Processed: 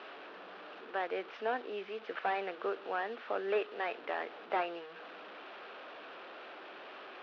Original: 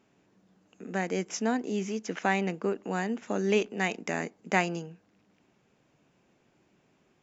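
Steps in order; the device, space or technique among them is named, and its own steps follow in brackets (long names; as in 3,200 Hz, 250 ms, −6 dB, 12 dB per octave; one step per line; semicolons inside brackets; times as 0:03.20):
digital answering machine (band-pass filter 390–3,100 Hz; linear delta modulator 32 kbit/s, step −41 dBFS; loudspeaker in its box 470–3,200 Hz, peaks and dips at 920 Hz −4 dB, 1,300 Hz +3 dB, 2,100 Hz −6 dB)
level +1 dB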